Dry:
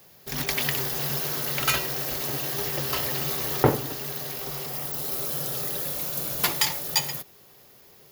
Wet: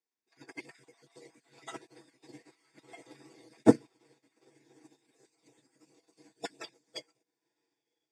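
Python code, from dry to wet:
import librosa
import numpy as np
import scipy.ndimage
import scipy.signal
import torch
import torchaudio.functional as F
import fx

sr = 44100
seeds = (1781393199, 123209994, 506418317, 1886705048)

p1 = fx.spec_dropout(x, sr, seeds[0], share_pct=38)
p2 = fx.low_shelf(p1, sr, hz=310.0, db=4.5)
p3 = p2 + 0.98 * np.pad(p2, (int(6.1 * sr / 1000.0), 0))[:len(p2)]
p4 = fx.quant_dither(p3, sr, seeds[1], bits=6, dither='triangular')
p5 = p3 + F.gain(torch.from_numpy(p4), -5.0).numpy()
p6 = fx.fixed_phaser(p5, sr, hz=830.0, stages=8)
p7 = p6 + fx.echo_diffused(p6, sr, ms=1045, feedback_pct=54, wet_db=-14.0, dry=0)
p8 = fx.formant_shift(p7, sr, semitones=-6)
p9 = fx.cabinet(p8, sr, low_hz=150.0, low_slope=24, high_hz=6000.0, hz=(260.0, 480.0, 1500.0, 2600.0), db=(5, 7, -9, 9))
y = fx.upward_expand(p9, sr, threshold_db=-44.0, expansion=2.5)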